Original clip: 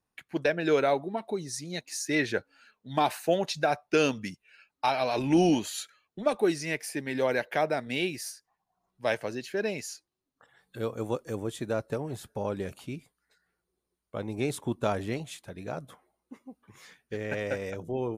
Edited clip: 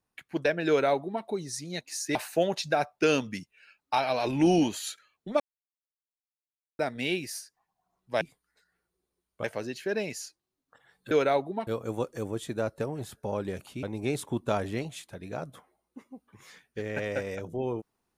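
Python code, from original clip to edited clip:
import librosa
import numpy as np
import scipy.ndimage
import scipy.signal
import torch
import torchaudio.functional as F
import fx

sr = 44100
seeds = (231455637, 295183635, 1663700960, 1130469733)

y = fx.edit(x, sr, fx.duplicate(start_s=0.68, length_s=0.56, to_s=10.79),
    fx.cut(start_s=2.15, length_s=0.91),
    fx.silence(start_s=6.31, length_s=1.39),
    fx.move(start_s=12.95, length_s=1.23, to_s=9.12), tone=tone)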